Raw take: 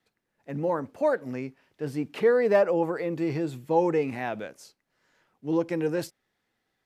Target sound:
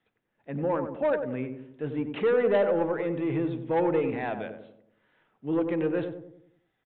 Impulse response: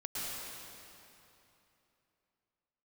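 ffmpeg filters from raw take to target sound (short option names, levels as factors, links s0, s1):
-filter_complex "[0:a]aresample=8000,asoftclip=type=tanh:threshold=0.119,aresample=44100,asplit=2[s0][s1];[s1]adelay=94,lowpass=f=860:p=1,volume=0.531,asplit=2[s2][s3];[s3]adelay=94,lowpass=f=860:p=1,volume=0.52,asplit=2[s4][s5];[s5]adelay=94,lowpass=f=860:p=1,volume=0.52,asplit=2[s6][s7];[s7]adelay=94,lowpass=f=860:p=1,volume=0.52,asplit=2[s8][s9];[s9]adelay=94,lowpass=f=860:p=1,volume=0.52,asplit=2[s10][s11];[s11]adelay=94,lowpass=f=860:p=1,volume=0.52,asplit=2[s12][s13];[s13]adelay=94,lowpass=f=860:p=1,volume=0.52[s14];[s0][s2][s4][s6][s8][s10][s12][s14]amix=inputs=8:normalize=0"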